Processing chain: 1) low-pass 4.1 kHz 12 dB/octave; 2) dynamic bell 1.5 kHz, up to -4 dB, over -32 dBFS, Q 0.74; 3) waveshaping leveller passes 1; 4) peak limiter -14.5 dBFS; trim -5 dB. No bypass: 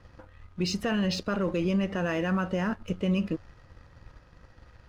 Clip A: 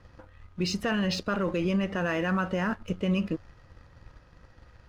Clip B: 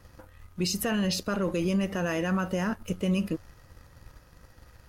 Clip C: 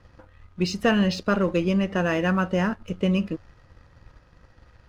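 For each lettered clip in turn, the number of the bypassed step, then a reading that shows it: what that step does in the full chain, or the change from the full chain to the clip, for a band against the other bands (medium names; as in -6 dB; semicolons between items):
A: 2, 2 kHz band +2.5 dB; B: 1, 4 kHz band +1.5 dB; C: 4, mean gain reduction 2.0 dB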